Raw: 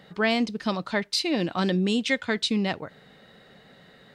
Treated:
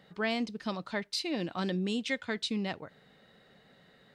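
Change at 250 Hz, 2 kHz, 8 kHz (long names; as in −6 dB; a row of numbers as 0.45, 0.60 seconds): −8.0, −8.0, −8.0 decibels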